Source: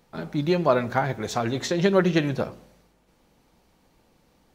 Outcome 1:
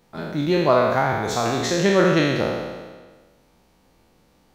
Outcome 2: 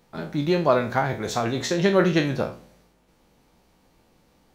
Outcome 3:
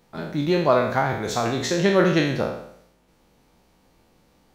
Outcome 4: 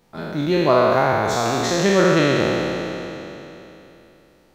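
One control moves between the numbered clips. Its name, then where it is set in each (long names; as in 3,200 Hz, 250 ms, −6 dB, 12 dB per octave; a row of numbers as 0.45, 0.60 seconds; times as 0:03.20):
peak hold with a decay on every bin, RT60: 1.45, 0.33, 0.7, 3.17 seconds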